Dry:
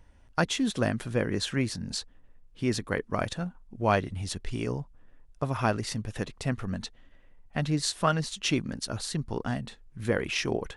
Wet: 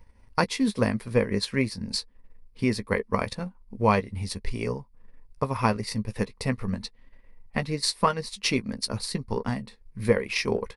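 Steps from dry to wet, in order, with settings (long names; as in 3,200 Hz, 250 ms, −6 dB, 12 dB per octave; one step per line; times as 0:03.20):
EQ curve with evenly spaced ripples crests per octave 0.9, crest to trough 9 dB
transient designer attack +4 dB, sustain −6 dB
double-tracking delay 15 ms −11 dB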